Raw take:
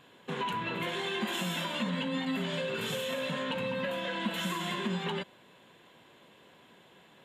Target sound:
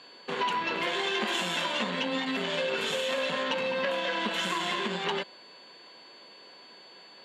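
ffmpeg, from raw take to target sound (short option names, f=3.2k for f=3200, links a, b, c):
-af "aeval=exprs='val(0)+0.00158*sin(2*PI*4500*n/s)':c=same,aeval=exprs='0.0944*(cos(1*acos(clip(val(0)/0.0944,-1,1)))-cos(1*PI/2))+0.0335*(cos(2*acos(clip(val(0)/0.0944,-1,1)))-cos(2*PI/2))':c=same,highpass=320,lowpass=7.6k,volume=5dB"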